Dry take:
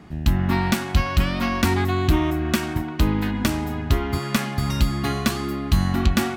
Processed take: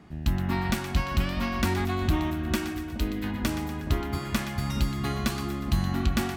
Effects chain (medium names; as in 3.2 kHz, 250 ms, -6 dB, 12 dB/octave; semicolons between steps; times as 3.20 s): 2.71–3.24 s: static phaser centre 330 Hz, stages 4; two-band feedback delay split 910 Hz, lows 421 ms, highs 121 ms, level -10 dB; trim -6.5 dB